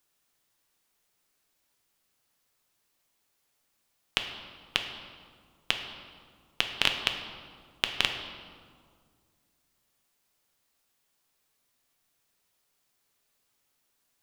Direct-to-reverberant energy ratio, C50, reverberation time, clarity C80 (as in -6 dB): 4.0 dB, 6.5 dB, 2.0 s, 8.0 dB